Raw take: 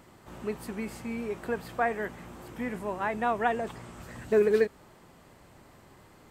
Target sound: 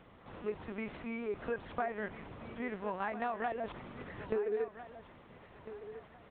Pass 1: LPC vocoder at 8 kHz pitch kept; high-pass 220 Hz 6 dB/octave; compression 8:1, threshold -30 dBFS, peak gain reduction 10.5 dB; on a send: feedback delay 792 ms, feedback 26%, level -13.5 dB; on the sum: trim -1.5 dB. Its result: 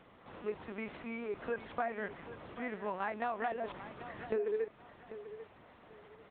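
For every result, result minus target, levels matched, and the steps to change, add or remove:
echo 559 ms early; 125 Hz band -3.5 dB
change: feedback delay 1351 ms, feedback 26%, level -13.5 dB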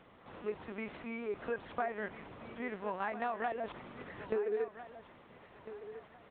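125 Hz band -3.5 dB
change: high-pass 81 Hz 6 dB/octave

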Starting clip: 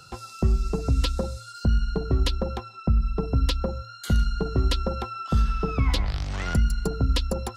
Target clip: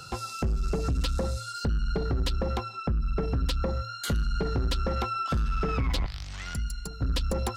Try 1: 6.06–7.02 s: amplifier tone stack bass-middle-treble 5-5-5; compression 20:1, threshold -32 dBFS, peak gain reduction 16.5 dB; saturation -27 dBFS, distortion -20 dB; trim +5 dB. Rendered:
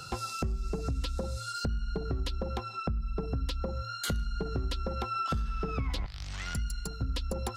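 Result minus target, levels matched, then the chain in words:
compression: peak gain reduction +8.5 dB
6.06–7.02 s: amplifier tone stack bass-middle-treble 5-5-5; compression 20:1, threshold -23 dBFS, peak gain reduction 8 dB; saturation -27 dBFS, distortion -12 dB; trim +5 dB

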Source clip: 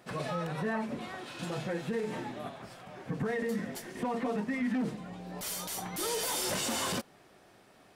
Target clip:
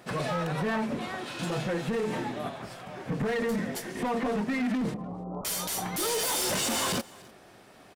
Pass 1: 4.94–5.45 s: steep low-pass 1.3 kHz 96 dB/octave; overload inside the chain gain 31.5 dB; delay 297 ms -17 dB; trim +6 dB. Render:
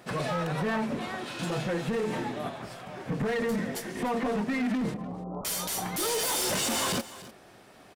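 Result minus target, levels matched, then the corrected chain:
echo-to-direct +6.5 dB
4.94–5.45 s: steep low-pass 1.3 kHz 96 dB/octave; overload inside the chain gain 31.5 dB; delay 297 ms -23.5 dB; trim +6 dB

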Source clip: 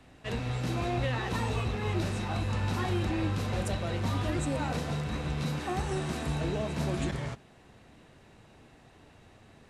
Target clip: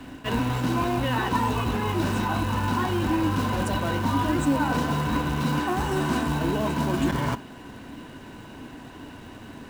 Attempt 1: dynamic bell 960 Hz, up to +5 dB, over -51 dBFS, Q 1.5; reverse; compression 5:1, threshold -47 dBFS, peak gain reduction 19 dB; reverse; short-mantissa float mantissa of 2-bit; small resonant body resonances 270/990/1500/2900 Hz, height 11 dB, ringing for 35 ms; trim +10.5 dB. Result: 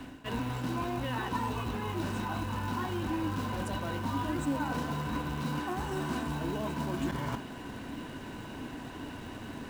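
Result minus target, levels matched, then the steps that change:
compression: peak gain reduction +9 dB
change: compression 5:1, threshold -36 dBFS, peak gain reduction 10.5 dB

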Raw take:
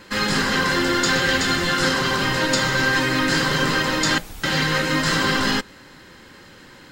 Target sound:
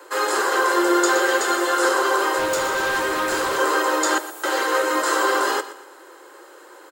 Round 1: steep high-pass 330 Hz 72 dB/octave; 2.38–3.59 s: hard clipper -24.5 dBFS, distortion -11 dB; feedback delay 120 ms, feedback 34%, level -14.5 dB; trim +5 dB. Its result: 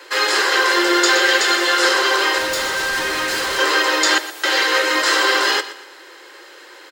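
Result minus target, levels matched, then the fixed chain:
4 kHz band +7.0 dB
steep high-pass 330 Hz 72 dB/octave; high-order bell 3.2 kHz -12 dB 2 oct; 2.38–3.59 s: hard clipper -24.5 dBFS, distortion -15 dB; feedback delay 120 ms, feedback 34%, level -14.5 dB; trim +5 dB

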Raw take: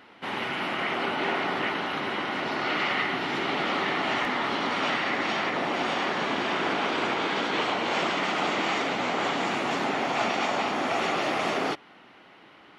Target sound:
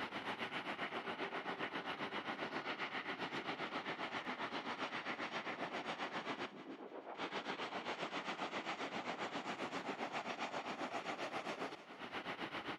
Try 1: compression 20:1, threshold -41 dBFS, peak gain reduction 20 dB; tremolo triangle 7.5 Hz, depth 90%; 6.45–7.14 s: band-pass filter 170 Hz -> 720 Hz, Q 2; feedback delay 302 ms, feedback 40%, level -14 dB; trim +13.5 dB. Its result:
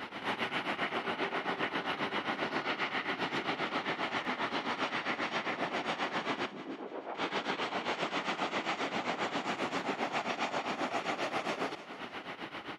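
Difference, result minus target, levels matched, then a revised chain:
compression: peak gain reduction -9 dB
compression 20:1, threshold -50.5 dBFS, peak gain reduction 29 dB; tremolo triangle 7.5 Hz, depth 90%; 6.45–7.14 s: band-pass filter 170 Hz -> 720 Hz, Q 2; feedback delay 302 ms, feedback 40%, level -14 dB; trim +13.5 dB

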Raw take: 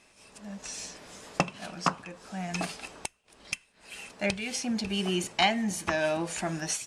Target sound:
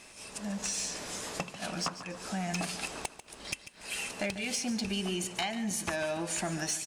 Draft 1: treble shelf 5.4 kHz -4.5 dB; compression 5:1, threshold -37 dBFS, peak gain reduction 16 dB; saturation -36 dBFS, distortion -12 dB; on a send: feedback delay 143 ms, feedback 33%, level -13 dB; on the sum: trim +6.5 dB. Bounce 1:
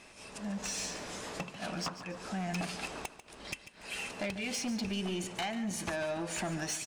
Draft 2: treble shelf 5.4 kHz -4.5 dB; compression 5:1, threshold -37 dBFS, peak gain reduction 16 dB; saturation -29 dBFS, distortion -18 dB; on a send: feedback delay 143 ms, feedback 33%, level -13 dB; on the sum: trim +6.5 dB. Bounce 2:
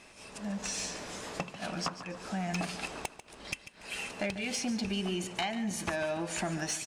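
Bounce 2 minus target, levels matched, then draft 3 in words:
8 kHz band -3.0 dB
treble shelf 5.4 kHz +6 dB; compression 5:1, threshold -37 dBFS, peak gain reduction 17 dB; saturation -29 dBFS, distortion -18 dB; on a send: feedback delay 143 ms, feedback 33%, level -13 dB; on the sum: trim +6.5 dB

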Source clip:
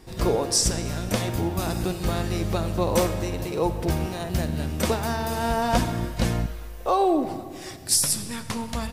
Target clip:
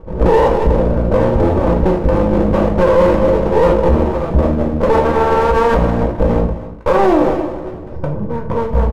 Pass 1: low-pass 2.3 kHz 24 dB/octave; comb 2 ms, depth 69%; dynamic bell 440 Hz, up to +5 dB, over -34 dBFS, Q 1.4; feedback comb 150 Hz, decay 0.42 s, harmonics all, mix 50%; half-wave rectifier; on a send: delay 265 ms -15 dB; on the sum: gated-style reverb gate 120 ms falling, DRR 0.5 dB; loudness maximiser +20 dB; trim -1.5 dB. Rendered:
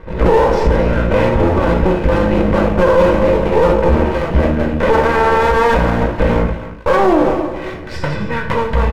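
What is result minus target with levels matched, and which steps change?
2 kHz band +6.0 dB
change: low-pass 880 Hz 24 dB/octave

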